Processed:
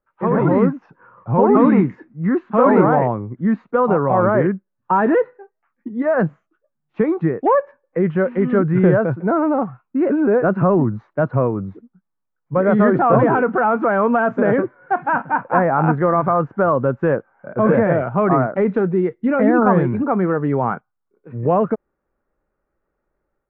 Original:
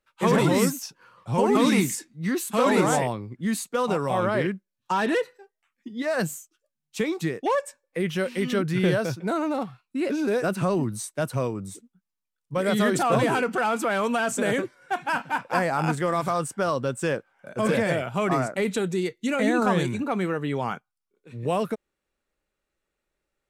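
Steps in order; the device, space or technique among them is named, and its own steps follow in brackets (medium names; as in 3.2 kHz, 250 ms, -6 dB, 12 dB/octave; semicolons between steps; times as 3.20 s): action camera in a waterproof case (low-pass 1.5 kHz 24 dB/octave; level rider gain up to 7 dB; trim +2 dB; AAC 64 kbps 16 kHz)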